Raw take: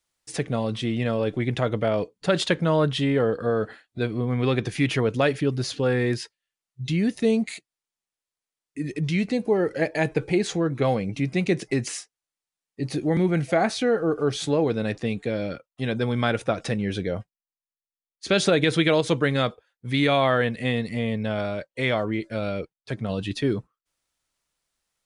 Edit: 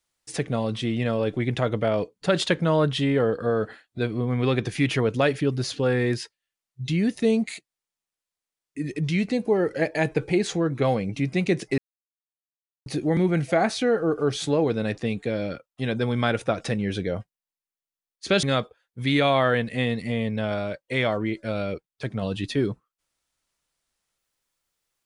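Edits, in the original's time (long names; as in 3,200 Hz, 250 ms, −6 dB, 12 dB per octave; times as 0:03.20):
0:11.78–0:12.86: silence
0:18.43–0:19.30: remove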